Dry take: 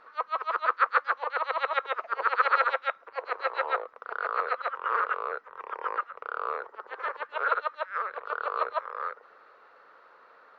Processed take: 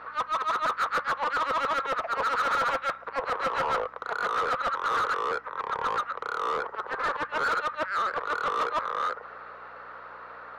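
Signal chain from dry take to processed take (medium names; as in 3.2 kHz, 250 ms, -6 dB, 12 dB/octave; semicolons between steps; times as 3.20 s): hum 60 Hz, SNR 33 dB; overdrive pedal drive 30 dB, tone 1.7 kHz, clips at -8.5 dBFS; trim -8.5 dB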